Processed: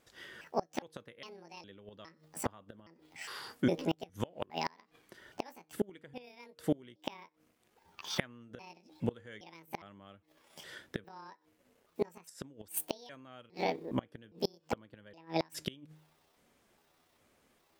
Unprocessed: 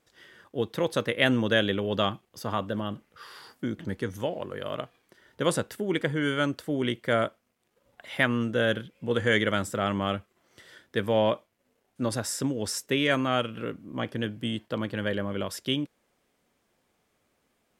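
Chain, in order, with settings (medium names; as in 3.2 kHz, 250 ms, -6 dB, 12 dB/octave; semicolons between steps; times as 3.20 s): pitch shift switched off and on +8.5 st, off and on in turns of 409 ms; de-hum 155 Hz, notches 3; inverted gate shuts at -20 dBFS, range -29 dB; trim +2.5 dB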